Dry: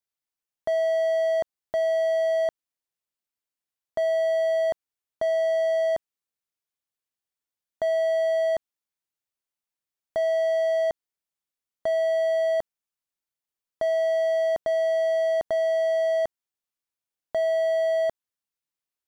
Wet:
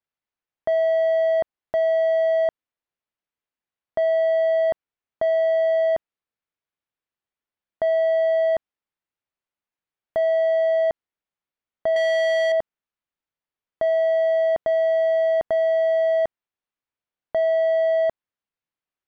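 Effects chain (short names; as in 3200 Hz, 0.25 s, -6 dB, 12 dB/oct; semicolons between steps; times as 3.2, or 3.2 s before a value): 11.96–12.52 infinite clipping; LPF 2800 Hz 12 dB/oct; gain +3.5 dB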